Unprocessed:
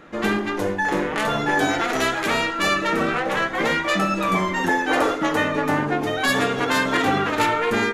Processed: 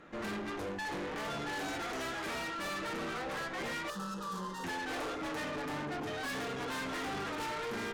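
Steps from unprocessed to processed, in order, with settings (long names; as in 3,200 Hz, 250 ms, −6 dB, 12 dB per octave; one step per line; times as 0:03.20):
high-shelf EQ 11,000 Hz −5 dB
tube saturation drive 29 dB, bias 0.5
0:03.90–0:04.64: phaser with its sweep stopped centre 450 Hz, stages 8
level −7 dB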